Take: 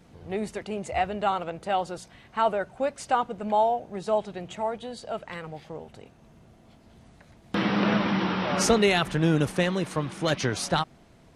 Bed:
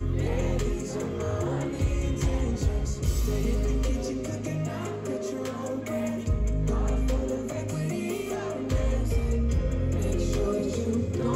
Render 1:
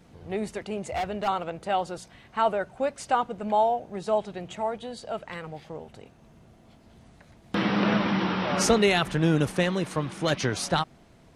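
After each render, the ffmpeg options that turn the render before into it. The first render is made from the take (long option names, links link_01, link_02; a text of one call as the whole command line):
ffmpeg -i in.wav -filter_complex "[0:a]asettb=1/sr,asplit=3[link_01][link_02][link_03];[link_01]atrim=end=0.774[link_04];[link_02]atrim=start=0.77:end=1.28,asetpts=PTS-STARTPTS,afade=type=in:duration=0.004:curve=qsin,afade=type=out:start_time=0.506:duration=0.004:curve=qsin,asoftclip=type=hard:threshold=-25dB[link_05];[link_03]atrim=start=1.276[link_06];[link_04][link_05]acrossfade=duration=0.004:curve1=hsin:curve2=qsin[link_07];[link_07][link_06]acrossfade=duration=0.004:curve1=qsin:curve2=hsin" out.wav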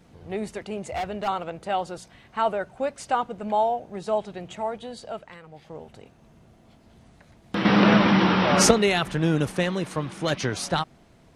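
ffmpeg -i in.wav -filter_complex "[0:a]asettb=1/sr,asplit=3[link_01][link_02][link_03];[link_01]atrim=end=7.654[link_04];[link_02]atrim=start=7.65:end=8.71,asetpts=PTS-STARTPTS,afade=type=in:duration=0.004:curve=qsin,afade=type=out:start_time=1.056:duration=0.004:curve=qsin,acontrast=80[link_05];[link_03]atrim=start=8.706[link_06];[link_04][link_05]acrossfade=duration=0.004:curve1=hsin:curve2=qsin[link_07];[link_07][link_06]acrossfade=duration=0.004:curve1=qsin:curve2=hsin,asplit=3[link_08][link_09][link_10];[link_08]atrim=end=5.37,asetpts=PTS-STARTPTS,afade=type=out:start_time=5.04:duration=0.33:silence=0.375837[link_11];[link_09]atrim=start=5.37:end=5.48,asetpts=PTS-STARTPTS,volume=-8.5dB[link_12];[link_10]atrim=start=5.48,asetpts=PTS-STARTPTS,afade=type=in:duration=0.33:silence=0.375837[link_13];[link_11][link_12][link_13]concat=n=3:v=0:a=1" out.wav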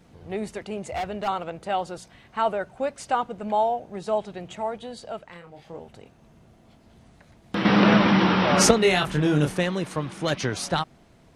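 ffmpeg -i in.wav -filter_complex "[0:a]asettb=1/sr,asplit=3[link_01][link_02][link_03];[link_01]atrim=end=5.304[link_04];[link_02]atrim=start=5.3:end=5.79,asetpts=PTS-STARTPTS,afade=type=in:duration=0.004:curve=qsin,afade=type=out:start_time=0.486:duration=0.004:curve=qsin,asplit=2[link_05][link_06];[link_06]adelay=29,volume=-6.5dB[link_07];[link_05][link_07]amix=inputs=2:normalize=0,atrim=end_sample=21609[link_08];[link_03]atrim=start=5.786[link_09];[link_04][link_08]acrossfade=duration=0.004:curve1=hsin:curve2=qsin[link_10];[link_10][link_09]acrossfade=duration=0.004:curve1=qsin:curve2=hsin,asettb=1/sr,asplit=3[link_11][link_12][link_13];[link_11]atrim=end=8.804[link_14];[link_12]atrim=start=8.8:end=9.58,asetpts=PTS-STARTPTS,afade=type=in:duration=0.004:curve=qsin,afade=type=out:start_time=0.776:duration=0.004:curve=qsin,asplit=2[link_15][link_16];[link_16]adelay=27,volume=-4dB[link_17];[link_15][link_17]amix=inputs=2:normalize=0,atrim=end_sample=34398[link_18];[link_13]atrim=start=9.576[link_19];[link_14][link_18]acrossfade=duration=0.004:curve1=hsin:curve2=qsin[link_20];[link_20][link_19]acrossfade=duration=0.004:curve1=qsin:curve2=hsin" out.wav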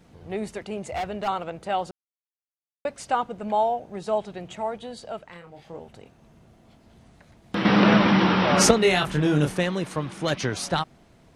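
ffmpeg -i in.wav -filter_complex "[0:a]asplit=3[link_01][link_02][link_03];[link_01]atrim=end=1.91,asetpts=PTS-STARTPTS,afade=type=out:start_time=1.906:duration=0.004:curve=hsin[link_04];[link_02]atrim=start=1.91:end=2.85,asetpts=PTS-STARTPTS,volume=0[link_05];[link_03]atrim=start=2.85,asetpts=PTS-STARTPTS,afade=type=in:duration=0.004:curve=hsin[link_06];[link_04][link_05][link_06]concat=n=3:v=0:a=1" out.wav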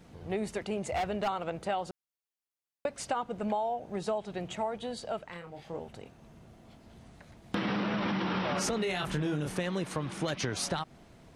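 ffmpeg -i in.wav -af "alimiter=limit=-15.5dB:level=0:latency=1:release=29,acompressor=threshold=-28dB:ratio=10" out.wav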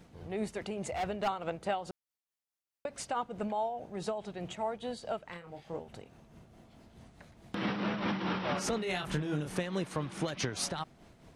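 ffmpeg -i in.wav -af "tremolo=f=4.7:d=0.5" out.wav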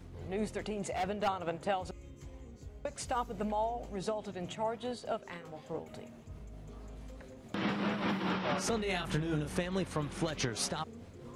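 ffmpeg -i in.wav -i bed.wav -filter_complex "[1:a]volume=-23dB[link_01];[0:a][link_01]amix=inputs=2:normalize=0" out.wav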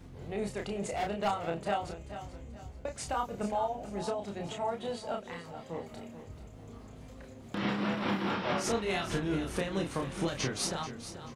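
ffmpeg -i in.wav -filter_complex "[0:a]asplit=2[link_01][link_02];[link_02]adelay=30,volume=-4dB[link_03];[link_01][link_03]amix=inputs=2:normalize=0,asplit=2[link_04][link_05];[link_05]aecho=0:1:435|870|1305|1740:0.251|0.0879|0.0308|0.0108[link_06];[link_04][link_06]amix=inputs=2:normalize=0" out.wav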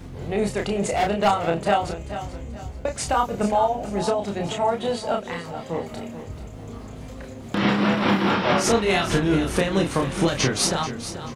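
ffmpeg -i in.wav -af "volume=11.5dB" out.wav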